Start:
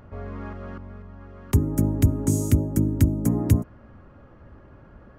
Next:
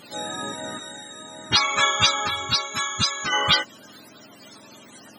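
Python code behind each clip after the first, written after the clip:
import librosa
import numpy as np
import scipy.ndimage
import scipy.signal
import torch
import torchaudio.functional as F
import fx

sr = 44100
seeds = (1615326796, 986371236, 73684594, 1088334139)

y = fx.octave_mirror(x, sr, pivot_hz=590.0)
y = fx.spec_box(y, sr, start_s=2.27, length_s=1.06, low_hz=410.0, high_hz=3800.0, gain_db=-8)
y = y * librosa.db_to_amplitude(7.0)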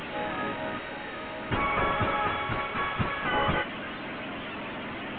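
y = fx.delta_mod(x, sr, bps=16000, step_db=-29.5)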